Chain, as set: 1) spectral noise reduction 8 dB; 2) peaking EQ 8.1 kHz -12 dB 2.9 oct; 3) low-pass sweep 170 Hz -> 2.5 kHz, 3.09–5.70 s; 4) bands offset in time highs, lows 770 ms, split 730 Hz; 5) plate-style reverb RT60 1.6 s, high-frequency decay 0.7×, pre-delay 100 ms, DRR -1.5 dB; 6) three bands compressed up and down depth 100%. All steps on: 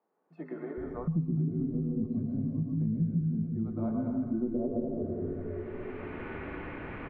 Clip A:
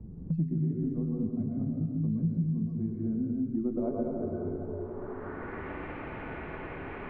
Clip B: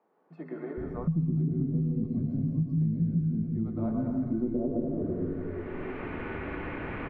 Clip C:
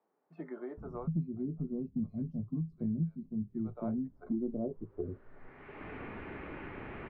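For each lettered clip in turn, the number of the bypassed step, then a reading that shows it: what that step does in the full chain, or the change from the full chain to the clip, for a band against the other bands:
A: 4, 1 kHz band +2.5 dB; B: 1, 500 Hz band -1.5 dB; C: 5, loudness change -5.0 LU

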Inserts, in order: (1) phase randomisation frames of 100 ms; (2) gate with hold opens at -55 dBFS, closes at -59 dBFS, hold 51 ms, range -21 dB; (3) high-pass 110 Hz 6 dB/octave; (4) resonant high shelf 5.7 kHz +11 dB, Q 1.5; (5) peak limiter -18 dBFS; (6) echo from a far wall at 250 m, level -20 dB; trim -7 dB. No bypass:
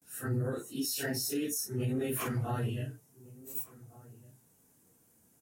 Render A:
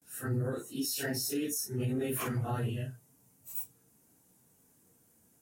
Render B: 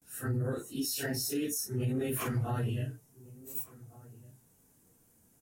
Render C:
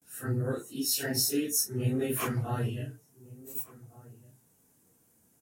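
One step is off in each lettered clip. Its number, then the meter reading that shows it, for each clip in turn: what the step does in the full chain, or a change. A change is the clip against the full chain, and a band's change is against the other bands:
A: 6, echo-to-direct -24.5 dB to none; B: 3, 125 Hz band +1.5 dB; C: 5, mean gain reduction 2.0 dB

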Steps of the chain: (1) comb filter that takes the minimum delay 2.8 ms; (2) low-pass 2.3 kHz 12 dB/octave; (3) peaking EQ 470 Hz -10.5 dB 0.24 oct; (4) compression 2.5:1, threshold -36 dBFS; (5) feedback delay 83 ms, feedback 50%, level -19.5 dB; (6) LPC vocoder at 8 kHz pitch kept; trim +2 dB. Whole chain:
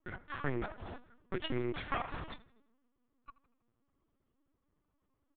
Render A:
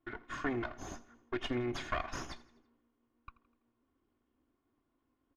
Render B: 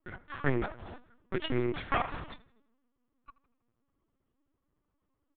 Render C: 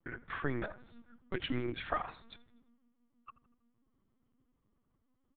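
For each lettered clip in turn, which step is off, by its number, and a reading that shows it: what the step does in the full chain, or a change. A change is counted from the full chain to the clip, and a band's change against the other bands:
6, 125 Hz band -3.0 dB; 4, crest factor change +1.5 dB; 1, momentary loudness spread change +6 LU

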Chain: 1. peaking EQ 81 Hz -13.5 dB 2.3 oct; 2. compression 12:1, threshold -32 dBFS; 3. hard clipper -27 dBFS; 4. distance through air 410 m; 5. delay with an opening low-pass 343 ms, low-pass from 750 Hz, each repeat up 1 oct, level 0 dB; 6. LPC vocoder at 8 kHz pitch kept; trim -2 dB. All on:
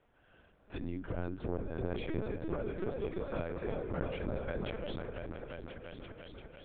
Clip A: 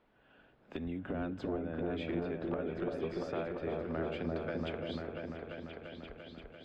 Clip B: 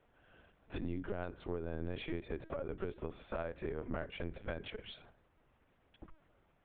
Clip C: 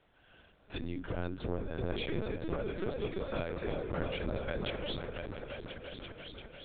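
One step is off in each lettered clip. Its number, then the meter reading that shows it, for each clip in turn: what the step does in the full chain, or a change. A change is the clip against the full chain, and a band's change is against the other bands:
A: 6, 125 Hz band -3.5 dB; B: 5, 4 kHz band +4.0 dB; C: 4, 4 kHz band +8.0 dB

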